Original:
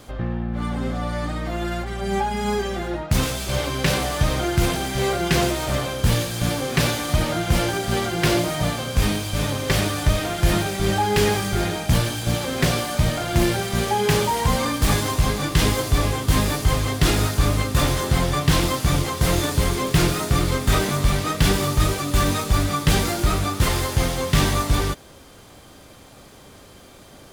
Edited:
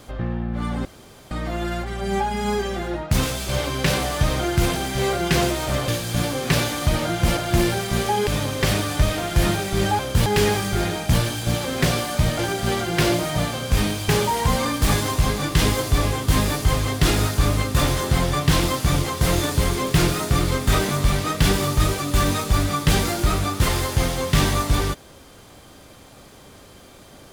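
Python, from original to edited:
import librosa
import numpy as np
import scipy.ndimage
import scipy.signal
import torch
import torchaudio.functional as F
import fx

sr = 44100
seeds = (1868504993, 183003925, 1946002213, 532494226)

y = fx.edit(x, sr, fx.room_tone_fill(start_s=0.85, length_s=0.46),
    fx.move(start_s=5.88, length_s=0.27, to_s=11.06),
    fx.swap(start_s=7.64, length_s=1.7, other_s=13.19, other_length_s=0.9), tone=tone)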